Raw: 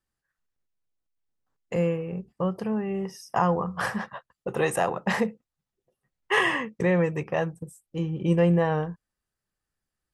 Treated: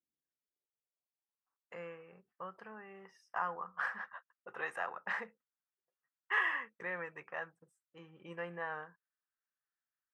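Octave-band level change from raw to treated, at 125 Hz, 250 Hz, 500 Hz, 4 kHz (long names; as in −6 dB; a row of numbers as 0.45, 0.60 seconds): −31.0, −28.5, −20.5, −16.5 decibels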